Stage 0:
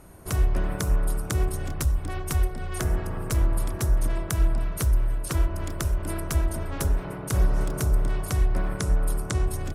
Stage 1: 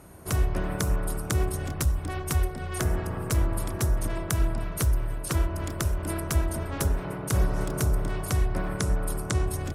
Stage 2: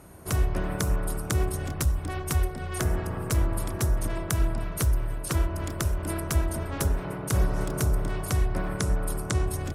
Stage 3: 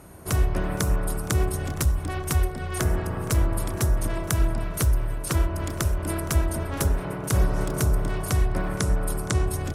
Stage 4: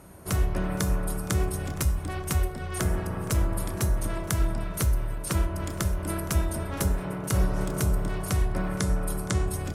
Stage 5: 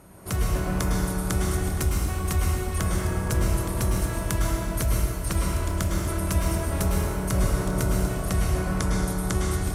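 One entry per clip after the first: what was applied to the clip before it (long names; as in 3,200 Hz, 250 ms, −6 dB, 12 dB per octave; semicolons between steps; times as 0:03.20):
high-pass filter 53 Hz; level +1 dB
no processing that can be heard
feedback echo with a high-pass in the loop 466 ms, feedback 36%, level −20 dB; level +2.5 dB
tuned comb filter 190 Hz, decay 0.41 s, harmonics odd, mix 70%; level +7 dB
dense smooth reverb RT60 1.6 s, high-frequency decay 0.9×, pre-delay 95 ms, DRR −1.5 dB; level −1 dB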